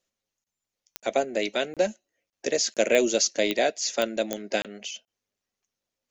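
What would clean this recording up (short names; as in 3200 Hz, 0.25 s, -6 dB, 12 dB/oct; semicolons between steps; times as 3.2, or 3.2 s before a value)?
de-click; interpolate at 0.44/1/1.74/2.3/2.74/4.62/5.05, 27 ms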